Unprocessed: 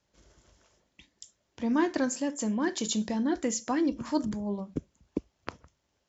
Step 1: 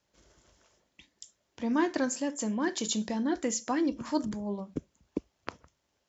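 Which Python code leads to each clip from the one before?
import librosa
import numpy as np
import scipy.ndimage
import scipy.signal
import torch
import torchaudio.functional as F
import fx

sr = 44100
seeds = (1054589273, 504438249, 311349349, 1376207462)

y = fx.low_shelf(x, sr, hz=190.0, db=-5.0)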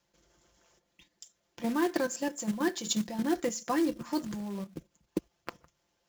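y = fx.level_steps(x, sr, step_db=10)
y = y + 0.53 * np.pad(y, (int(5.8 * sr / 1000.0), 0))[:len(y)]
y = fx.quant_float(y, sr, bits=2)
y = F.gain(torch.from_numpy(y), 2.0).numpy()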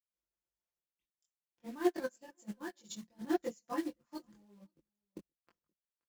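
y = fx.chorus_voices(x, sr, voices=4, hz=1.1, base_ms=22, depth_ms=3.0, mix_pct=50)
y = y + 10.0 ** (-21.0 / 20.0) * np.pad(y, (int(524 * sr / 1000.0), 0))[:len(y)]
y = fx.upward_expand(y, sr, threshold_db=-46.0, expansion=2.5)
y = F.gain(torch.from_numpy(y), 1.0).numpy()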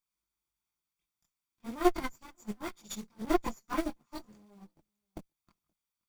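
y = fx.lower_of_two(x, sr, delay_ms=0.87)
y = F.gain(torch.from_numpy(y), 6.0).numpy()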